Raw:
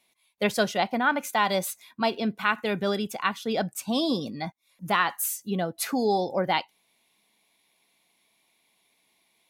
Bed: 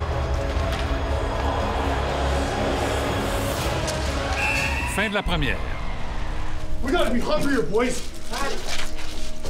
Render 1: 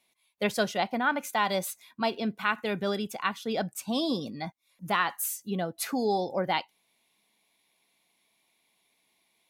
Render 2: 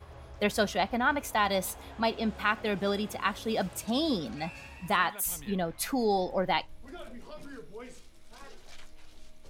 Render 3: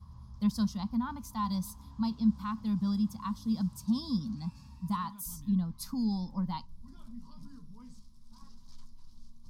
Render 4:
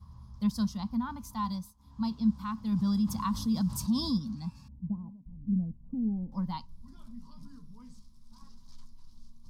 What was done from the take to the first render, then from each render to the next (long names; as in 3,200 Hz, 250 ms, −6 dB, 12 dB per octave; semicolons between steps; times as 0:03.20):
level −3 dB
mix in bed −23.5 dB
drawn EQ curve 110 Hz 0 dB, 220 Hz +6 dB, 380 Hz −26 dB, 720 Hz −26 dB, 1,000 Hz −3 dB, 1,500 Hz −22 dB, 2,500 Hz −26 dB, 5,000 Hz −3 dB, 7,300 Hz −11 dB, 12,000 Hz −9 dB
0:01.46–0:02.04: duck −17.5 dB, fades 0.27 s; 0:02.72–0:04.18: envelope flattener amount 50%; 0:04.68–0:06.32: Butterworth low-pass 610 Hz